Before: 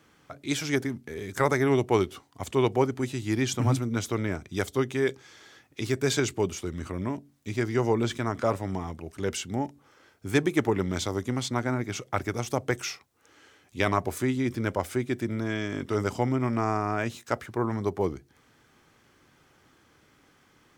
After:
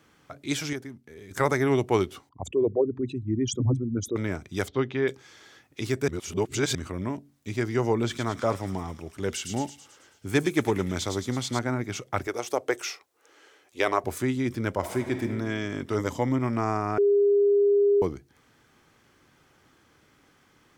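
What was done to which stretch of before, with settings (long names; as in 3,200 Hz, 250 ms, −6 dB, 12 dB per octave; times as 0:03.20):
0:00.73–0:01.31: clip gain −9.5 dB
0:02.29–0:04.16: spectral envelope exaggerated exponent 3
0:04.68–0:05.08: low-pass filter 4,100 Hz 24 dB per octave
0:06.08–0:06.75: reverse
0:07.94–0:11.59: delay with a high-pass on its return 109 ms, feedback 60%, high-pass 3,300 Hz, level −4 dB
0:12.27–0:14.04: low shelf with overshoot 260 Hz −14 dB, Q 1.5
0:14.78–0:15.23: thrown reverb, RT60 1.6 s, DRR 5 dB
0:15.98–0:16.39: EQ curve with evenly spaced ripples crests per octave 1.1, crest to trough 7 dB
0:16.98–0:18.02: beep over 405 Hz −17 dBFS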